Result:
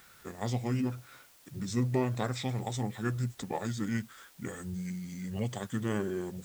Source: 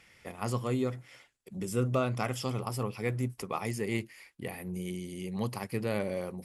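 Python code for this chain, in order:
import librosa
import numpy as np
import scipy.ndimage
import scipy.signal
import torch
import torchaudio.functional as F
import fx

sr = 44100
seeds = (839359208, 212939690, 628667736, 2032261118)

y = fx.formant_shift(x, sr, semitones=-6)
y = fx.quant_dither(y, sr, seeds[0], bits=10, dither='triangular')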